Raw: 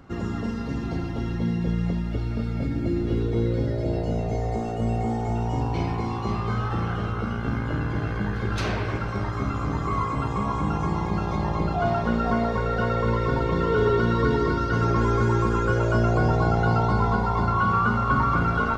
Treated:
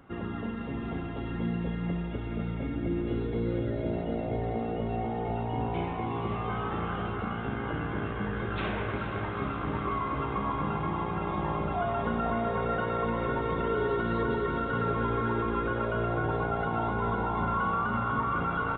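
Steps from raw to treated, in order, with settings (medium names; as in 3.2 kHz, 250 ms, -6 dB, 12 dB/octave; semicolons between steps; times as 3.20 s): bass shelf 170 Hz -7 dB; peak limiter -18 dBFS, peak gain reduction 6.5 dB; on a send: echo that smears into a reverb 457 ms, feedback 74%, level -8.5 dB; on the sum: resampled via 8 kHz; trim -3.5 dB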